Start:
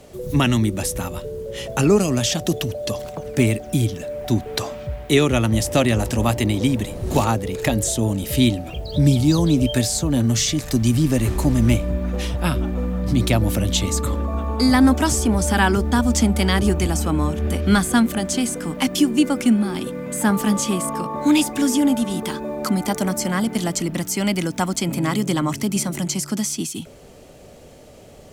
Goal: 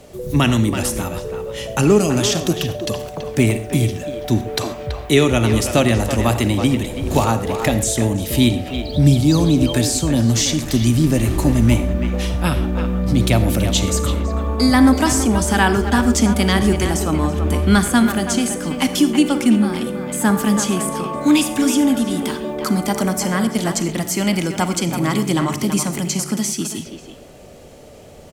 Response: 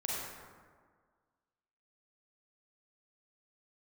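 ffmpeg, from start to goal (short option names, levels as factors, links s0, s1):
-filter_complex "[0:a]asplit=2[s0][s1];[s1]adelay=330,highpass=300,lowpass=3400,asoftclip=type=hard:threshold=0.2,volume=0.447[s2];[s0][s2]amix=inputs=2:normalize=0,asplit=2[s3][s4];[1:a]atrim=start_sample=2205,afade=t=out:st=0.19:d=0.01,atrim=end_sample=8820[s5];[s4][s5]afir=irnorm=-1:irlink=0,volume=0.335[s6];[s3][s6]amix=inputs=2:normalize=0"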